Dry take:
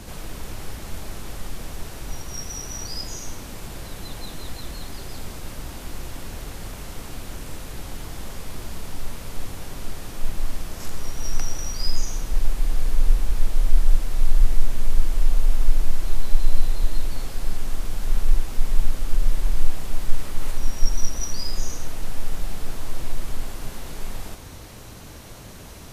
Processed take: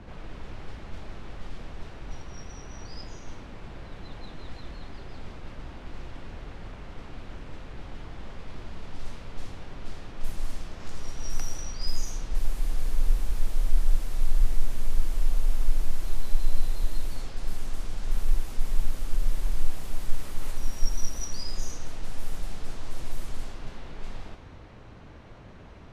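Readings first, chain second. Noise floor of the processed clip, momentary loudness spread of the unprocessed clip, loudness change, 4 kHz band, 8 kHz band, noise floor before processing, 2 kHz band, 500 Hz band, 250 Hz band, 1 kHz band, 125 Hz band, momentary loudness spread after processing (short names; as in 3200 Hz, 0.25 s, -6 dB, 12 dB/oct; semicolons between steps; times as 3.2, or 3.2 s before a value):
-46 dBFS, 11 LU, -6.0 dB, -7.5 dB, n/a, -40 dBFS, -6.0 dB, -5.5 dB, -5.5 dB, -5.5 dB, -5.5 dB, 13 LU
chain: low-pass opened by the level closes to 2100 Hz, open at -12 dBFS; gain -5.5 dB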